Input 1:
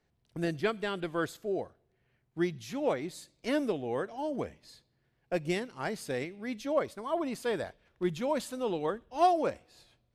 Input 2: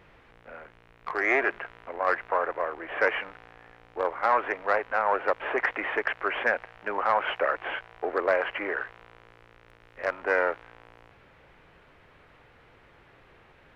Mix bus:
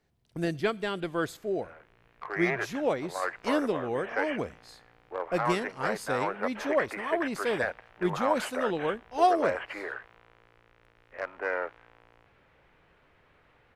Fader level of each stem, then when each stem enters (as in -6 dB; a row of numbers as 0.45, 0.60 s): +2.0, -6.5 dB; 0.00, 1.15 s